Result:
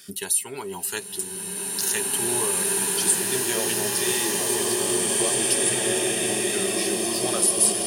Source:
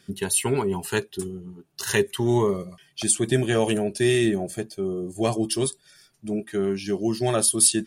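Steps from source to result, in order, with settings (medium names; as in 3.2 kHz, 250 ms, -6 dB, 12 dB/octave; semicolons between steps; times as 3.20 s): RIAA curve recording; compression 2:1, threshold -38 dBFS, peak gain reduction 20 dB; swelling reverb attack 2440 ms, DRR -6 dB; trim +4 dB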